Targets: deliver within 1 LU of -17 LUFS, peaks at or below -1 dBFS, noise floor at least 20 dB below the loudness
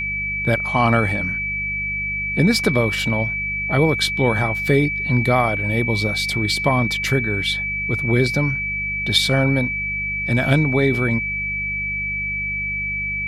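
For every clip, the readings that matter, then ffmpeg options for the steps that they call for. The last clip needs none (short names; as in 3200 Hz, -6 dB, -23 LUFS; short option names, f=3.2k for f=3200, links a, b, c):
hum 50 Hz; harmonics up to 200 Hz; hum level -31 dBFS; steady tone 2300 Hz; tone level -22 dBFS; loudness -19.0 LUFS; peak -3.0 dBFS; loudness target -17.0 LUFS
-> -af "bandreject=f=50:t=h:w=4,bandreject=f=100:t=h:w=4,bandreject=f=150:t=h:w=4,bandreject=f=200:t=h:w=4"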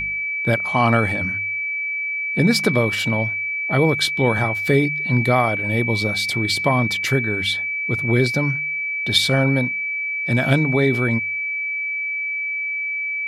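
hum none; steady tone 2300 Hz; tone level -22 dBFS
-> -af "bandreject=f=2.3k:w=30"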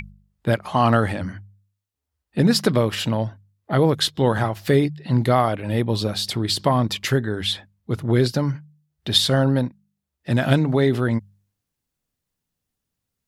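steady tone none; loudness -21.0 LUFS; peak -4.0 dBFS; loudness target -17.0 LUFS
-> -af "volume=4dB,alimiter=limit=-1dB:level=0:latency=1"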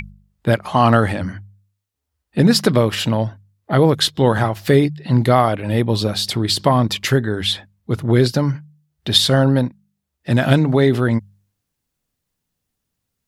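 loudness -17.5 LUFS; peak -1.0 dBFS; noise floor -78 dBFS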